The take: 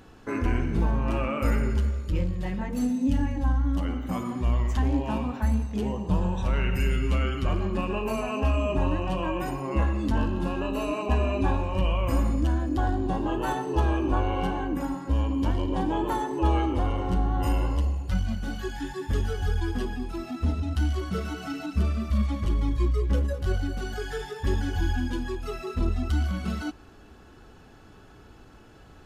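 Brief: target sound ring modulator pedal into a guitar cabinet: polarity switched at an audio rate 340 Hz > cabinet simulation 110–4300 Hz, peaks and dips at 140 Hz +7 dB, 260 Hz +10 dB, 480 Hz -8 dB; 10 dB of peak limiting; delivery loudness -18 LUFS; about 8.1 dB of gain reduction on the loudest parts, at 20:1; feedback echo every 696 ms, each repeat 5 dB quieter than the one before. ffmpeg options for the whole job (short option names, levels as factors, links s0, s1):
-af "acompressor=threshold=0.0447:ratio=20,alimiter=level_in=1.78:limit=0.0631:level=0:latency=1,volume=0.562,aecho=1:1:696|1392|2088|2784|3480|4176|4872:0.562|0.315|0.176|0.0988|0.0553|0.031|0.0173,aeval=exprs='val(0)*sgn(sin(2*PI*340*n/s))':c=same,highpass=110,equalizer=f=140:t=q:w=4:g=7,equalizer=f=260:t=q:w=4:g=10,equalizer=f=480:t=q:w=4:g=-8,lowpass=f=4300:w=0.5412,lowpass=f=4300:w=1.3066,volume=5.01"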